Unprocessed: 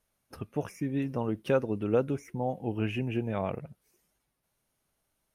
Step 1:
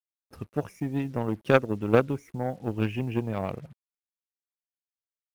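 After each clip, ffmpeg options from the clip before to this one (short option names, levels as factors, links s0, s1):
-af "lowshelf=f=210:g=5.5,acrusher=bits=8:mix=0:aa=0.5,aeval=exprs='0.237*(cos(1*acos(clip(val(0)/0.237,-1,1)))-cos(1*PI/2))+0.0596*(cos(3*acos(clip(val(0)/0.237,-1,1)))-cos(3*PI/2))':c=same,volume=2.66"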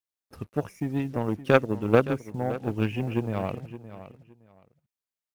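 -af "aecho=1:1:567|1134:0.2|0.0419,volume=1.12"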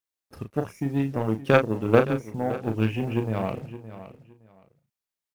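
-filter_complex "[0:a]asplit=2[s0][s1];[s1]adelay=36,volume=0.422[s2];[s0][s2]amix=inputs=2:normalize=0,volume=1.12"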